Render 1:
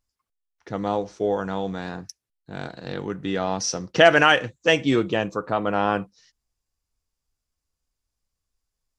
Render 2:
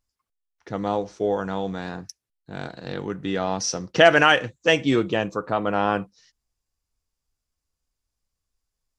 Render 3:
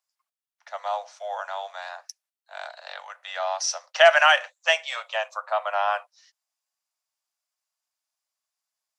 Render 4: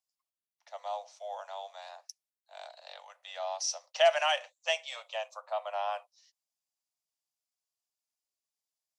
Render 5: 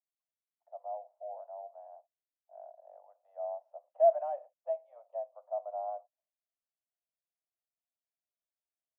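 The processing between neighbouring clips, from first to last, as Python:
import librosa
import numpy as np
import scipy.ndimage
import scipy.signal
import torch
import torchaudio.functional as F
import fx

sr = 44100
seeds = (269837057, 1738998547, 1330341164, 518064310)

y1 = x
y2 = scipy.signal.sosfilt(scipy.signal.butter(16, 580.0, 'highpass', fs=sr, output='sos'), y1)
y3 = fx.peak_eq(y2, sr, hz=1500.0, db=-12.5, octaves=1.0)
y3 = y3 * 10.0 ** (-5.5 / 20.0)
y4 = fx.ladder_lowpass(y3, sr, hz=730.0, resonance_pct=70)
y4 = y4 * 10.0 ** (-1.5 / 20.0)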